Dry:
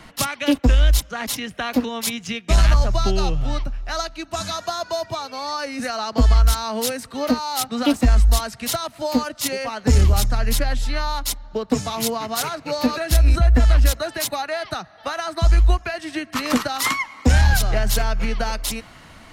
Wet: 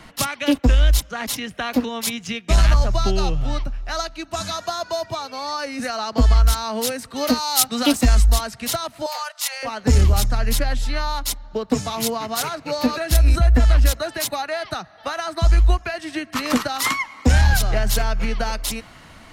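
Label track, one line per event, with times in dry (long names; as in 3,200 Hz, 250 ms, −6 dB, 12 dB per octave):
7.160000	8.260000	high-shelf EQ 3,200 Hz +10 dB
9.060000	9.630000	Butterworth high-pass 670 Hz 48 dB per octave
13.150000	13.570000	high-shelf EQ 8,900 Hz +7 dB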